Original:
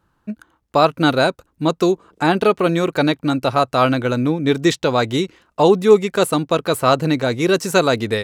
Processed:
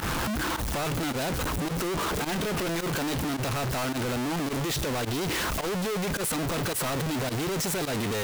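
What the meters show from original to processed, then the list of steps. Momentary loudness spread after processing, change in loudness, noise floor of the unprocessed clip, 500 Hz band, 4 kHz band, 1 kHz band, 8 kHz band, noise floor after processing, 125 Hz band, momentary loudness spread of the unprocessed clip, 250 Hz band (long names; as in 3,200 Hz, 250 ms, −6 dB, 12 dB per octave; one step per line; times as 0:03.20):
1 LU, −11.0 dB, −67 dBFS, −15.0 dB, −7.5 dB, −12.0 dB, +0.5 dB, −31 dBFS, −7.0 dB, 8 LU, −11.0 dB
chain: sign of each sample alone
fake sidechain pumping 107 BPM, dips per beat 1, −23 dB, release 85 ms
hard clipping −23.5 dBFS, distortion −20 dB
level −5 dB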